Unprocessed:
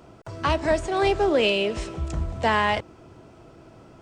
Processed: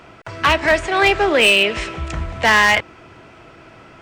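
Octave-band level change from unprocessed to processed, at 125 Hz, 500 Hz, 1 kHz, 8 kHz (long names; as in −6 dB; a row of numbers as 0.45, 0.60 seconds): +2.0, +4.0, +6.5, +13.0 decibels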